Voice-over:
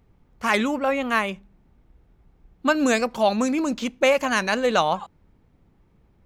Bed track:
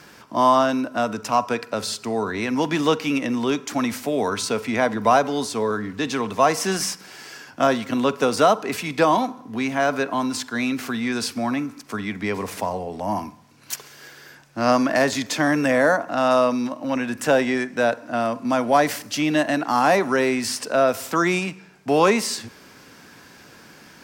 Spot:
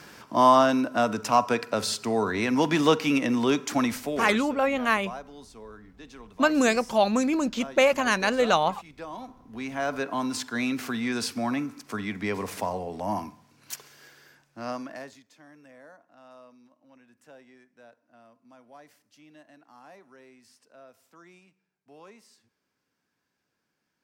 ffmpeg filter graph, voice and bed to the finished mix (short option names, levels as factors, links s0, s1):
-filter_complex "[0:a]adelay=3750,volume=0.841[s0];[1:a]volume=7.08,afade=t=out:st=3.77:d=0.67:silence=0.0891251,afade=t=in:st=9.1:d=1.31:silence=0.125893,afade=t=out:st=13.04:d=2.19:silence=0.0354813[s1];[s0][s1]amix=inputs=2:normalize=0"